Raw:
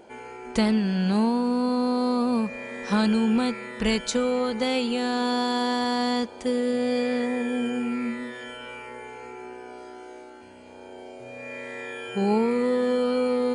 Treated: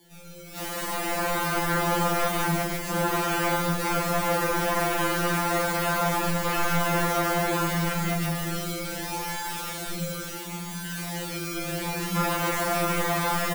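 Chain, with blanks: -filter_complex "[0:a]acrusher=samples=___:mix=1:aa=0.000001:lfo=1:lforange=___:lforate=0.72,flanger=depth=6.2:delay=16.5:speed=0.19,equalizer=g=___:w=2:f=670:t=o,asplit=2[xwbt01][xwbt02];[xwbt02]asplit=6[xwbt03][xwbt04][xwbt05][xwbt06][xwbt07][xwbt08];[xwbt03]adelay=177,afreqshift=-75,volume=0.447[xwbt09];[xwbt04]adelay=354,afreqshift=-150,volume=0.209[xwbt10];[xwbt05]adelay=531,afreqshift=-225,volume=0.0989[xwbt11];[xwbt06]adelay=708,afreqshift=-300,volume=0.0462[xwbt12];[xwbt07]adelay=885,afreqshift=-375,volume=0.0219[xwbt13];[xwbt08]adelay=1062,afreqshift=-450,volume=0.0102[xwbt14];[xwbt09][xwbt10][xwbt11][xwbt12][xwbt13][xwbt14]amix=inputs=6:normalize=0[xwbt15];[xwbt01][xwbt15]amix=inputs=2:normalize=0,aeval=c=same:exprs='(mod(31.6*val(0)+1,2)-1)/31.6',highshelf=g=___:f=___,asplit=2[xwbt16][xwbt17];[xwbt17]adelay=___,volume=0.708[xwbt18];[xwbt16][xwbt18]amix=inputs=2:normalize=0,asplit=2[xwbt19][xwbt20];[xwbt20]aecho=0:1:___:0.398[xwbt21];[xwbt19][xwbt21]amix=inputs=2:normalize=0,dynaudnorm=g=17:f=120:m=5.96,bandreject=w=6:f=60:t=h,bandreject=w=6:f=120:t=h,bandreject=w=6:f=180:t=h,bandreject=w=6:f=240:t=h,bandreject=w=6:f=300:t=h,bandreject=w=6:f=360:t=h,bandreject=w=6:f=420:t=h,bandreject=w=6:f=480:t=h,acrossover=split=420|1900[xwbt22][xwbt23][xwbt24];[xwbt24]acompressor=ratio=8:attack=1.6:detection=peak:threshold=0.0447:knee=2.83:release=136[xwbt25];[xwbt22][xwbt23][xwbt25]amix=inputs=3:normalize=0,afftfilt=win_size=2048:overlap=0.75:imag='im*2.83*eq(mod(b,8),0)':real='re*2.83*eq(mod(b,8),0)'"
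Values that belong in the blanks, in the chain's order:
33, 33, -7.5, 9, 6700, 42, 139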